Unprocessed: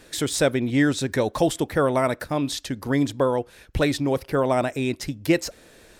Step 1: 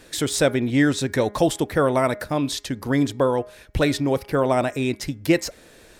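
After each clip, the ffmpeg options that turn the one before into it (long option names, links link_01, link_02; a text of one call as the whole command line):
ffmpeg -i in.wav -af "bandreject=frequency=206.1:width_type=h:width=4,bandreject=frequency=412.2:width_type=h:width=4,bandreject=frequency=618.3:width_type=h:width=4,bandreject=frequency=824.4:width_type=h:width=4,bandreject=frequency=1030.5:width_type=h:width=4,bandreject=frequency=1236.6:width_type=h:width=4,bandreject=frequency=1442.7:width_type=h:width=4,bandreject=frequency=1648.8:width_type=h:width=4,bandreject=frequency=1854.9:width_type=h:width=4,bandreject=frequency=2061:width_type=h:width=4,bandreject=frequency=2267.1:width_type=h:width=4,volume=1.5dB" out.wav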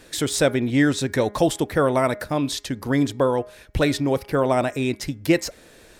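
ffmpeg -i in.wav -af anull out.wav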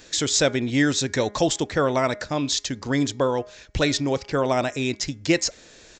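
ffmpeg -i in.wav -af "aresample=16000,aresample=44100,crystalizer=i=3:c=0,volume=-2.5dB" out.wav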